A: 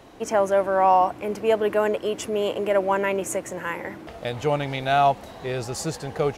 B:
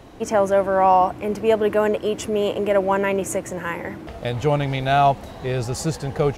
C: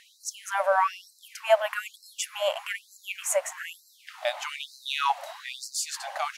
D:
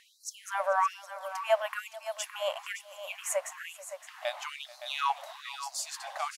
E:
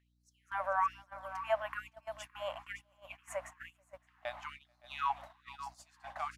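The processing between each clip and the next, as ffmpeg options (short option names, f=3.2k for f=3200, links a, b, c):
-af "lowshelf=f=190:g=9,volume=1.5dB"
-af "afftfilt=real='re*gte(b*sr/1024,530*pow(4000/530,0.5+0.5*sin(2*PI*1.1*pts/sr)))':imag='im*gte(b*sr/1024,530*pow(4000/530,0.5+0.5*sin(2*PI*1.1*pts/sr)))':win_size=1024:overlap=0.75,volume=1.5dB"
-filter_complex "[0:a]equalizer=f=1.1k:t=o:w=0.26:g=4.5,asplit=2[a][b];[b]aecho=0:1:437|566:0.1|0.266[c];[a][c]amix=inputs=2:normalize=0,volume=-5.5dB"
-filter_complex "[0:a]acrossover=split=580 2400:gain=0.0794 1 0.224[a][b][c];[a][b][c]amix=inputs=3:normalize=0,aeval=exprs='val(0)+0.00158*(sin(2*PI*60*n/s)+sin(2*PI*2*60*n/s)/2+sin(2*PI*3*60*n/s)/3+sin(2*PI*4*60*n/s)/4+sin(2*PI*5*60*n/s)/5)':c=same,agate=range=-15dB:threshold=-44dB:ratio=16:detection=peak,volume=-3dB"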